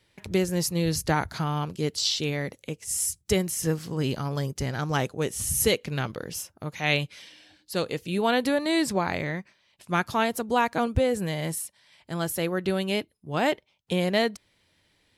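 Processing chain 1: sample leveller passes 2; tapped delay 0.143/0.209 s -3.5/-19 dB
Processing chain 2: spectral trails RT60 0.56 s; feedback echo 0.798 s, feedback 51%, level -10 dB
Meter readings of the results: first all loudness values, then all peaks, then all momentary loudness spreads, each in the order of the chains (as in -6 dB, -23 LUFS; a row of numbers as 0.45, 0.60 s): -20.0, -25.5 LUFS; -6.5, -6.0 dBFS; 8, 8 LU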